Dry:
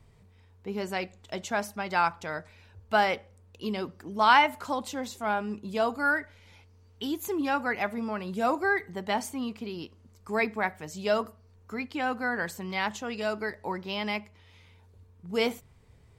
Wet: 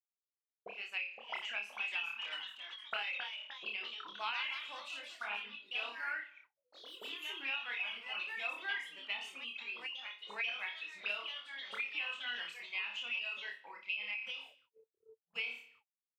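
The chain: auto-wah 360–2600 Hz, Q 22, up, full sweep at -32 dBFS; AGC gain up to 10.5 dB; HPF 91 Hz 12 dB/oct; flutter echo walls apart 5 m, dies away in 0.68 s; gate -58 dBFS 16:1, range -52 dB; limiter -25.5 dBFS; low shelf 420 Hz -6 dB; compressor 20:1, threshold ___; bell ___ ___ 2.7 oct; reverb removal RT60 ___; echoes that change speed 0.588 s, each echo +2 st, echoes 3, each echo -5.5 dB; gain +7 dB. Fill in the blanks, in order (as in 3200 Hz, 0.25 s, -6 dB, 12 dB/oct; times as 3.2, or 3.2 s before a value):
-37 dBFS, 3400 Hz, -4.5 dB, 0.9 s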